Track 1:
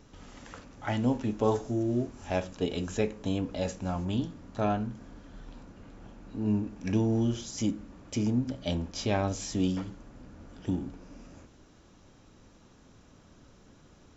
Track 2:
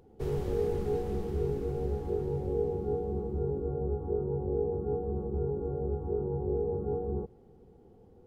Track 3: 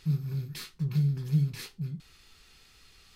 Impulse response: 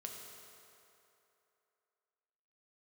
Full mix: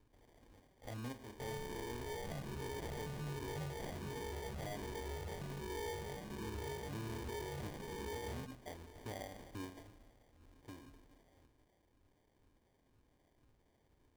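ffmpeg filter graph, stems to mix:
-filter_complex "[0:a]equalizer=f=190:w=3.1:g=-14,acrossover=split=490[a][b];[a]aeval=exprs='val(0)*(1-0.7/2+0.7/2*cos(2*PI*2*n/s))':c=same[c];[b]aeval=exprs='val(0)*(1-0.7/2-0.7/2*cos(2*PI*2*n/s))':c=same[d];[c][d]amix=inputs=2:normalize=0,volume=-13.5dB,asplit=2[e][f];[f]volume=-6.5dB[g];[1:a]asoftclip=type=tanh:threshold=-36.5dB,asplit=2[h][i];[i]afreqshift=1.3[j];[h][j]amix=inputs=2:normalize=1,adelay=1200,volume=-1.5dB[k];[2:a]tiltshelf=f=970:g=-7.5,adelay=2250,volume=-7.5dB[l];[3:a]atrim=start_sample=2205[m];[g][m]afir=irnorm=-1:irlink=0[n];[e][k][l][n]amix=inputs=4:normalize=0,acrusher=samples=33:mix=1:aa=0.000001,alimiter=level_in=13dB:limit=-24dB:level=0:latency=1:release=81,volume=-13dB"

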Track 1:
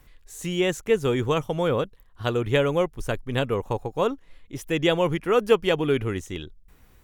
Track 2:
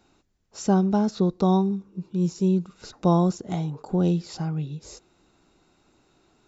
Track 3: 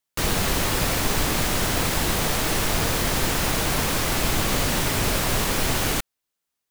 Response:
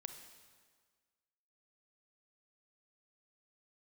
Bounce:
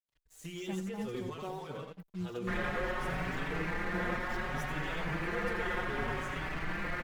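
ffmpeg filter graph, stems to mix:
-filter_complex "[0:a]flanger=delay=9.8:depth=4.6:regen=-35:speed=0.93:shape=triangular,volume=-3.5dB,asplit=2[a][b];[b]volume=-11dB[c];[1:a]acrusher=bits=5:mix=0:aa=0.5,volume=-14.5dB,asplit=2[d][e];[e]volume=-5.5dB[f];[2:a]aecho=1:1:5.6:0.67,aeval=exprs='0.158*(abs(mod(val(0)/0.158+3,4)-2)-1)':c=same,lowpass=f=1.8k:t=q:w=2.5,adelay=2300,volume=-10.5dB[g];[a][d]amix=inputs=2:normalize=0,alimiter=level_in=5dB:limit=-24dB:level=0:latency=1:release=158,volume=-5dB,volume=0dB[h];[3:a]atrim=start_sample=2205[i];[f][i]afir=irnorm=-1:irlink=0[j];[c]aecho=0:1:84|168|252:1|0.16|0.0256[k];[g][h][j][k]amix=inputs=4:normalize=0,aeval=exprs='sgn(val(0))*max(abs(val(0))-0.00299,0)':c=same,asplit=2[l][m];[m]adelay=4.9,afreqshift=0.65[n];[l][n]amix=inputs=2:normalize=1"

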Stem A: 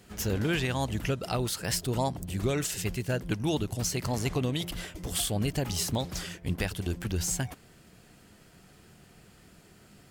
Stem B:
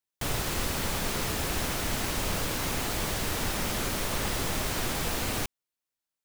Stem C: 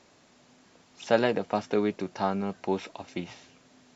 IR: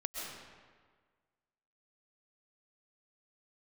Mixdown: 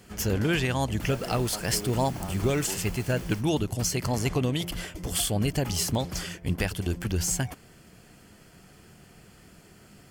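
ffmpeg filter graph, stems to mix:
-filter_complex "[0:a]volume=3dB[a];[1:a]adelay=100,volume=-14dB[b];[2:a]alimiter=limit=-18dB:level=0:latency=1:release=128,volume=-10dB,asplit=2[c][d];[d]apad=whole_len=279955[e];[b][e]sidechaingate=range=-33dB:threshold=-58dB:ratio=16:detection=peak[f];[a][f][c]amix=inputs=3:normalize=0,bandreject=f=3.8k:w=10"

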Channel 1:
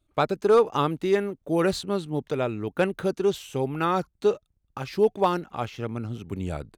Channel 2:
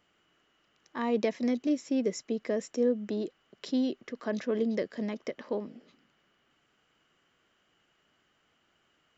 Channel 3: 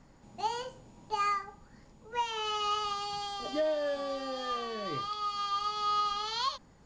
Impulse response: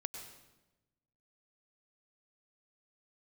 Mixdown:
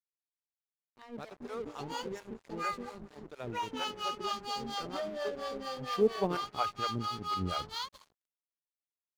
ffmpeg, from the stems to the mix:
-filter_complex "[0:a]adelay=1000,volume=-2.5dB,asplit=2[a][b];[b]volume=-14.5dB[c];[1:a]lowshelf=f=210:g=3.5,acrossover=split=360|3000[d][e][f];[e]acompressor=threshold=-30dB:ratio=6[g];[d][g][f]amix=inputs=3:normalize=0,volume=-11.5dB,asplit=3[h][i][j];[i]volume=-23dB[k];[2:a]alimiter=level_in=6dB:limit=-24dB:level=0:latency=1:release=105,volume=-6dB,adelay=1400,volume=2.5dB,asplit=2[l][m];[m]volume=-6dB[n];[j]apad=whole_len=342908[o];[a][o]sidechaincompress=threshold=-58dB:ratio=6:attack=16:release=344[p];[3:a]atrim=start_sample=2205[q];[c][k][n]amix=inputs=3:normalize=0[r];[r][q]afir=irnorm=-1:irlink=0[s];[p][h][l][s]amix=inputs=4:normalize=0,acrossover=split=510[t][u];[t]aeval=exprs='val(0)*(1-1/2+1/2*cos(2*PI*4.3*n/s))':c=same[v];[u]aeval=exprs='val(0)*(1-1/2-1/2*cos(2*PI*4.3*n/s))':c=same[w];[v][w]amix=inputs=2:normalize=0,aeval=exprs='sgn(val(0))*max(abs(val(0))-0.00316,0)':c=same"

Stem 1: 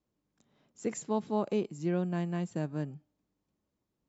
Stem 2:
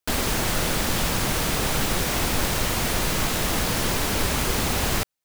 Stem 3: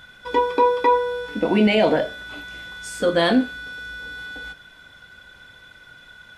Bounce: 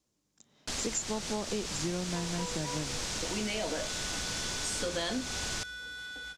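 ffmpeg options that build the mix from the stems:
-filter_complex "[0:a]volume=1.5dB,asplit=2[a][b];[1:a]lowpass=6.7k,adelay=600,volume=-14.5dB[c];[2:a]adelay=1800,volume=-10.5dB[d];[b]apad=whole_len=360516[e];[d][e]sidechaincompress=threshold=-37dB:ratio=8:attack=16:release=1360[f];[a][c][f]amix=inputs=3:normalize=0,equalizer=f=6.6k:w=0.64:g=14,acompressor=threshold=-30dB:ratio=6"

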